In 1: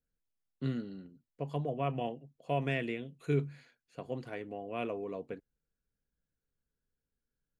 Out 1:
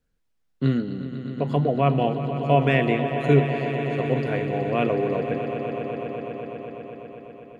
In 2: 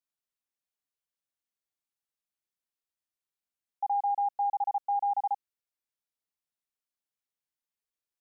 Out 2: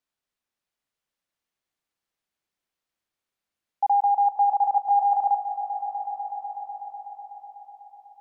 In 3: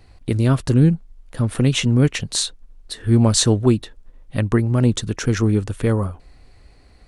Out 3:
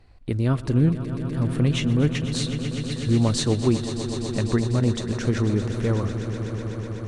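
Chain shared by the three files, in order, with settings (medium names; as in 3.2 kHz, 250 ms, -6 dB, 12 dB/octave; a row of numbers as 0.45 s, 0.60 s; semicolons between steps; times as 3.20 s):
treble shelf 6.5 kHz -11 dB; echo with a slow build-up 124 ms, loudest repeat 5, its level -13 dB; normalise loudness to -24 LUFS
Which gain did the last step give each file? +13.0 dB, +8.5 dB, -5.0 dB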